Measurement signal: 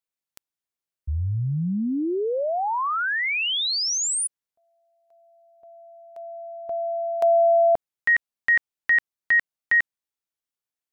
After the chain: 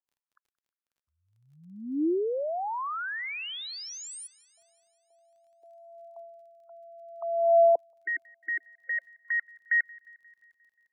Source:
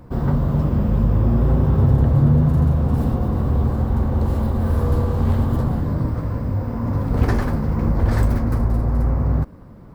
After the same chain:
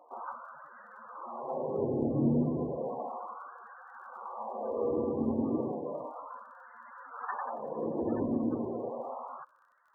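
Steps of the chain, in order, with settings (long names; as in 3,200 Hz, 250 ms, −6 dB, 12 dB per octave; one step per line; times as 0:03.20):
high-shelf EQ 2,100 Hz −10 dB
auto-filter high-pass sine 0.33 Hz 290–1,600 Hz
spectral peaks only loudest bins 32
surface crackle 29 per second −54 dBFS
on a send: delay with a high-pass on its return 177 ms, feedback 62%, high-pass 1,900 Hz, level −21.5 dB
on the sum: level −7.5 dB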